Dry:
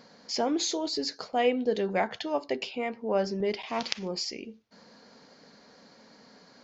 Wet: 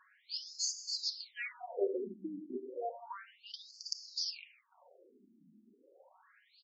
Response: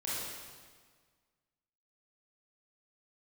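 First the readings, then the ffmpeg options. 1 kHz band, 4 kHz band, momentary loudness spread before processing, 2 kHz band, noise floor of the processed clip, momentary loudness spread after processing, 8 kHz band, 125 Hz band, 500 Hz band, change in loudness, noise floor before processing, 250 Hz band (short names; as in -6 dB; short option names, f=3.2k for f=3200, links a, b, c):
-15.5 dB, -5.0 dB, 7 LU, -10.5 dB, -70 dBFS, 13 LU, n/a, under -20 dB, -12.5 dB, -9.5 dB, -57 dBFS, -14.5 dB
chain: -filter_complex "[0:a]aecho=1:1:5.4:0.44,asplit=2[a][b];[1:a]atrim=start_sample=2205[c];[b][c]afir=irnorm=-1:irlink=0,volume=-10.5dB[d];[a][d]amix=inputs=2:normalize=0,afftfilt=real='re*between(b*sr/1024,240*pow(6400/240,0.5+0.5*sin(2*PI*0.32*pts/sr))/1.41,240*pow(6400/240,0.5+0.5*sin(2*PI*0.32*pts/sr))*1.41)':imag='im*between(b*sr/1024,240*pow(6400/240,0.5+0.5*sin(2*PI*0.32*pts/sr))/1.41,240*pow(6400/240,0.5+0.5*sin(2*PI*0.32*pts/sr))*1.41)':win_size=1024:overlap=0.75,volume=-5dB"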